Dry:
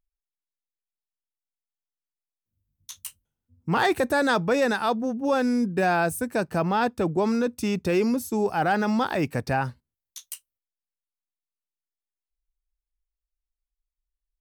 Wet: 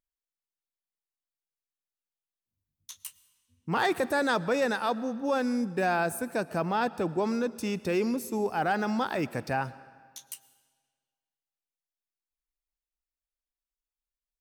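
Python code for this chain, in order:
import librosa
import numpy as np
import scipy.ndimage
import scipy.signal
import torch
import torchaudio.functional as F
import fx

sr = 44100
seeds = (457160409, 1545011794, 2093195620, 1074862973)

y = fx.low_shelf(x, sr, hz=93.0, db=-10.5)
y = fx.rev_freeverb(y, sr, rt60_s=1.7, hf_ratio=0.9, predelay_ms=70, drr_db=18.0)
y = y * 10.0 ** (-4.0 / 20.0)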